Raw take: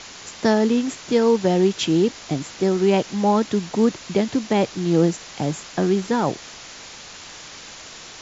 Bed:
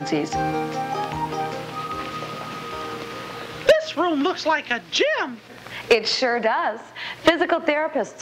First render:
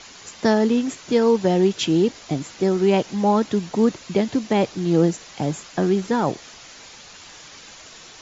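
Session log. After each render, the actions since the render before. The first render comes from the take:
broadband denoise 6 dB, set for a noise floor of −40 dBFS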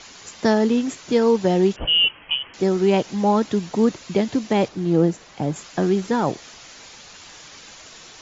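0:01.76–0:02.54: voice inversion scrambler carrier 3,200 Hz
0:04.68–0:05.56: high-shelf EQ 2,600 Hz −8.5 dB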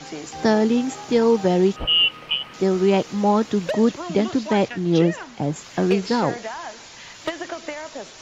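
mix in bed −11.5 dB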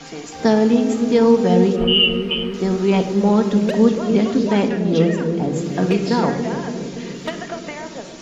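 bucket-brigade delay 285 ms, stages 1,024, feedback 70%, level −6 dB
rectangular room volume 3,200 cubic metres, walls furnished, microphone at 1.7 metres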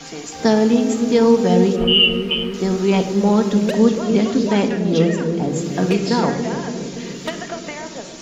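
high-shelf EQ 5,700 Hz +8.5 dB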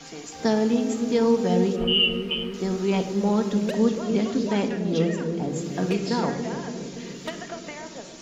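level −7 dB

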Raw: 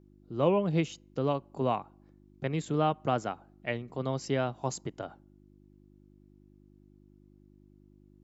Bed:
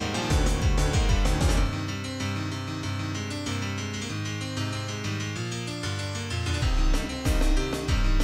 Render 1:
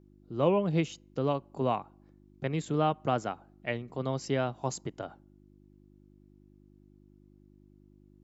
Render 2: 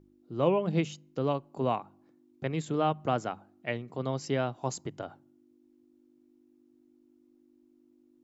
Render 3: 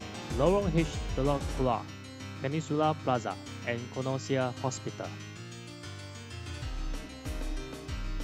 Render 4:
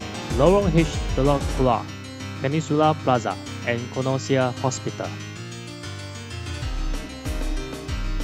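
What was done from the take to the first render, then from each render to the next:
no processing that can be heard
hum removal 50 Hz, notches 4
mix in bed −12.5 dB
level +9 dB

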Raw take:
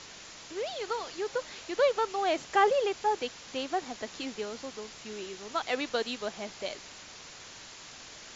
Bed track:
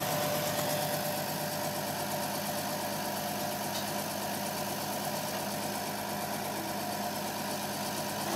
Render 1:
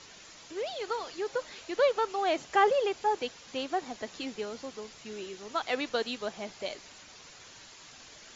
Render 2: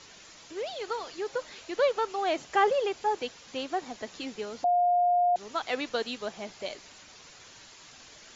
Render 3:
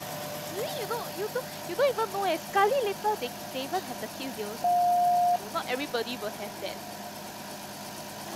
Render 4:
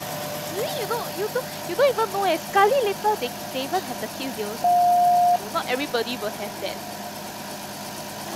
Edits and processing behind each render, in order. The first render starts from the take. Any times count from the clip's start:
broadband denoise 6 dB, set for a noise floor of −48 dBFS
0:04.64–0:05.36: beep over 709 Hz −20.5 dBFS
mix in bed track −5.5 dB
level +6 dB

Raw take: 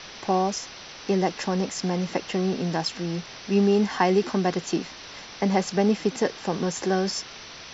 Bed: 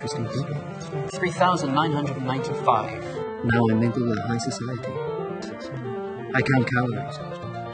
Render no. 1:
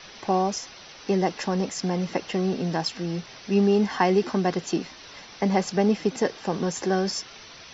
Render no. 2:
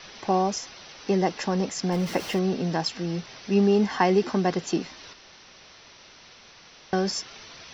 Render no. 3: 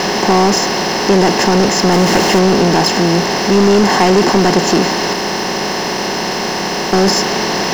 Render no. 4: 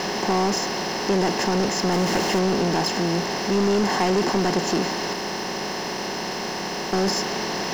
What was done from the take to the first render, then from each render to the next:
broadband denoise 6 dB, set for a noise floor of −42 dBFS
0:01.92–0:02.39: converter with a step at zero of −35 dBFS; 0:05.13–0:06.93: fill with room tone
compressor on every frequency bin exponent 0.4; leveller curve on the samples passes 3
level −10.5 dB

